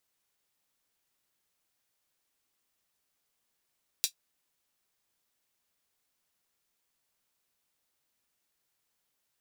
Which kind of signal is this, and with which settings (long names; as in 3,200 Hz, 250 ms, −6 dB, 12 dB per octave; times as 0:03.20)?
closed synth hi-hat, high-pass 3,900 Hz, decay 0.10 s